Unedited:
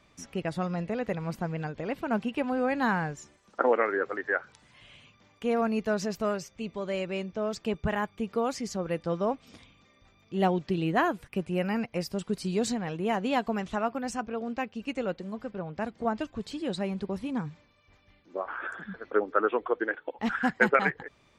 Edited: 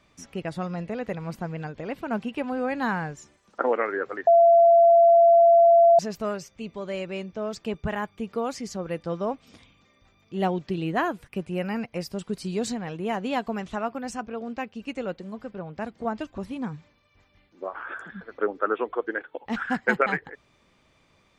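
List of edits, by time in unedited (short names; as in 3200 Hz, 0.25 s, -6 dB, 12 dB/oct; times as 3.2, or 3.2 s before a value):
4.27–5.99 bleep 679 Hz -12 dBFS
16.38–17.11 cut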